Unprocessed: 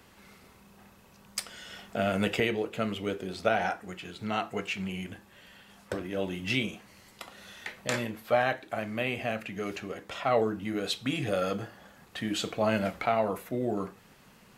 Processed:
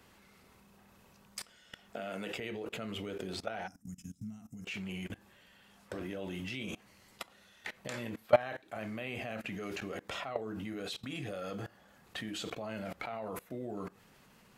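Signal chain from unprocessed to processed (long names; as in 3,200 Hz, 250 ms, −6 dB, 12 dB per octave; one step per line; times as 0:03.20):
0:01.94–0:02.34: high-pass filter 220 Hz 12 dB per octave
output level in coarse steps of 22 dB
0:03.68–0:04.65: gain on a spectral selection 290–5,000 Hz −25 dB
level +4 dB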